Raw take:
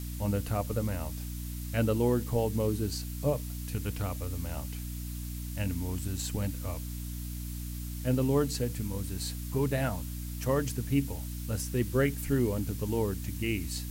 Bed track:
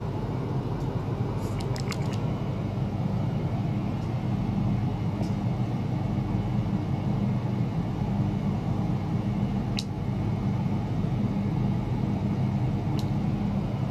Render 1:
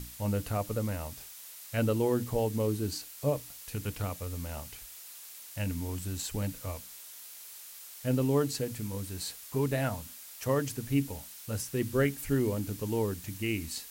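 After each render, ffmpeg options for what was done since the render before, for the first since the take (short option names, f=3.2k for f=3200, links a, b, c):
-af "bandreject=f=60:t=h:w=6,bandreject=f=120:t=h:w=6,bandreject=f=180:t=h:w=6,bandreject=f=240:t=h:w=6,bandreject=f=300:t=h:w=6"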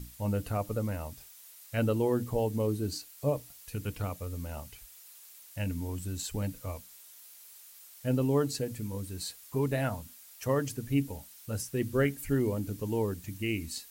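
-af "afftdn=nr=7:nf=-48"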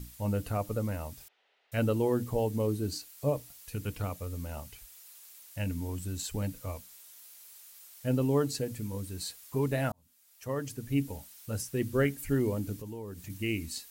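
-filter_complex "[0:a]asettb=1/sr,asplit=3[a][b][c];[a]atrim=end=1.284[d];[b]atrim=start=1.28:end=1.72,asetpts=PTS-STARTPTS,afade=t=in:d=0.004:c=qsin,afade=t=out:st=0.436:d=0.004:c=qsin,highpass=f=290:w=0.5412,highpass=f=290:w=1.3066,equalizer=f=310:t=q:w=4:g=-8,equalizer=f=440:t=q:w=4:g=5,equalizer=f=740:t=q:w=4:g=4,equalizer=f=1.1k:t=q:w=4:g=-9,equalizer=f=1.6k:t=q:w=4:g=-4,equalizer=f=2.3k:t=q:w=4:g=-5,lowpass=f=2.7k:w=0.5412,lowpass=f=2.7k:w=1.3066[e];[c]atrim=start=1.716[f];[d][e]acrossfade=d=0.004:c1=hsin:c2=qsin[g];[g][f]acrossfade=d=0.004:c1=qsin:c2=hsin,asettb=1/sr,asplit=3[h][i][j];[h]atrim=end=12.764[k];[i]atrim=start=12.76:end=13.3,asetpts=PTS-STARTPTS,afade=t=in:d=0.004:c=qsin,afade=t=out:st=0.536:d=0.004:c=qsin,acompressor=threshold=-39dB:ratio=4:attack=3.2:release=140:knee=1:detection=peak[l];[j]atrim=start=13.296[m];[k][l]acrossfade=d=0.004:c1=hsin:c2=qsin[n];[n][m]acrossfade=d=0.004:c1=qsin:c2=hsin,asplit=2[o][p];[o]atrim=end=9.92,asetpts=PTS-STARTPTS,afade=t=out:st=9.916:d=0.004:c=hsin[q];[p]atrim=start=9.92,asetpts=PTS-STARTPTS,afade=t=in:d=1.17[r];[q][r]concat=n=2:v=0:a=1"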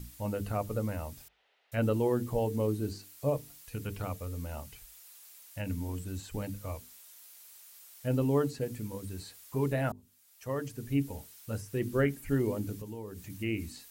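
-filter_complex "[0:a]acrossover=split=2500[a][b];[b]acompressor=threshold=-47dB:ratio=4:attack=1:release=60[c];[a][c]amix=inputs=2:normalize=0,bandreject=f=50:t=h:w=6,bandreject=f=100:t=h:w=6,bandreject=f=150:t=h:w=6,bandreject=f=200:t=h:w=6,bandreject=f=250:t=h:w=6,bandreject=f=300:t=h:w=6,bandreject=f=350:t=h:w=6,bandreject=f=400:t=h:w=6,bandreject=f=450:t=h:w=6"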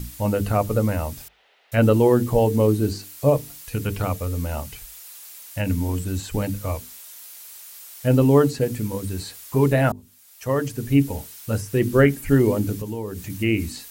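-af "volume=12dB"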